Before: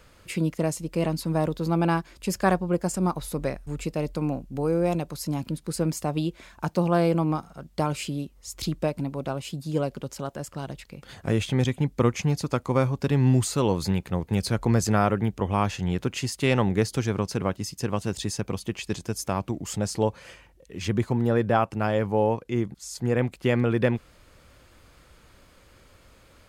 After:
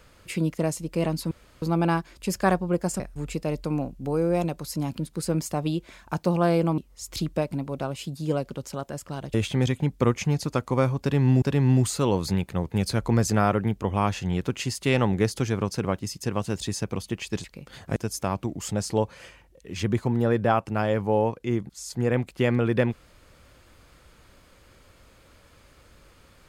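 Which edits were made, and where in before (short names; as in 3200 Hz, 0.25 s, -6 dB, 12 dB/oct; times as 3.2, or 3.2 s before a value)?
1.31–1.62 room tone
3–3.51 cut
7.29–8.24 cut
10.8–11.32 move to 19.01
12.99–13.4 loop, 2 plays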